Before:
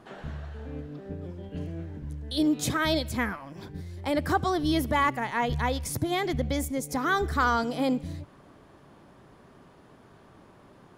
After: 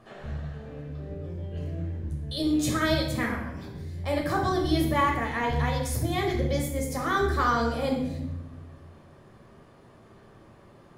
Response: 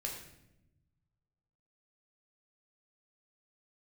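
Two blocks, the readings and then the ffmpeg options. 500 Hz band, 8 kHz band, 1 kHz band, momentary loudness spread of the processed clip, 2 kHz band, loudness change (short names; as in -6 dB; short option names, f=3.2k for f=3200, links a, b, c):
+1.5 dB, -0.5 dB, 0.0 dB, 14 LU, -0.5 dB, +0.5 dB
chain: -filter_complex "[1:a]atrim=start_sample=2205[a];[0:a][a]afir=irnorm=-1:irlink=0"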